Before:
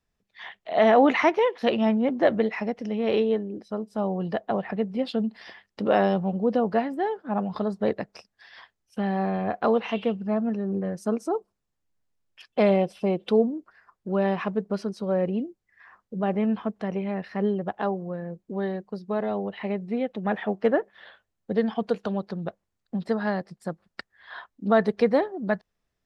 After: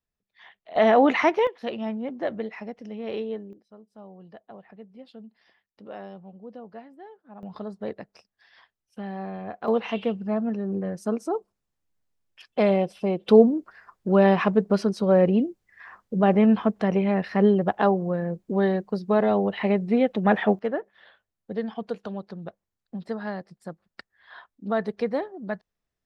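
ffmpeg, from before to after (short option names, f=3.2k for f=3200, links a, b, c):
-af "asetnsamples=n=441:p=0,asendcmd='0.76 volume volume 0dB;1.47 volume volume -8dB;3.53 volume volume -18.5dB;7.43 volume volume -8dB;9.68 volume volume -0.5dB;13.29 volume volume 6.5dB;20.59 volume volume -5.5dB',volume=-10dB"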